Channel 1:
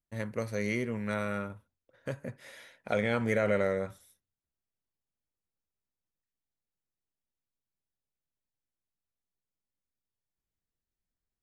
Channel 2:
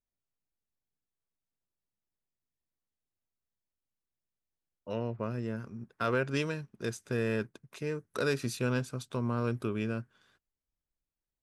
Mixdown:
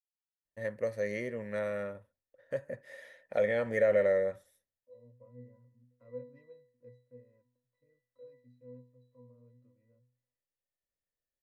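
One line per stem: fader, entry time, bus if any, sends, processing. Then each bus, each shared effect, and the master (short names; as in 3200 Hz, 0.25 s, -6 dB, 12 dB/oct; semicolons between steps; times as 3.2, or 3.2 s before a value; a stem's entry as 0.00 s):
-9.0 dB, 0.45 s, no send, dry
4.79 s -17 dB -> 5.28 s -9.5 dB -> 6.92 s -9.5 dB -> 7.27 s -18 dB, 0.00 s, no send, HPF 110 Hz; octave resonator B, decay 0.48 s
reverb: off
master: small resonant body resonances 550/1800 Hz, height 15 dB, ringing for 25 ms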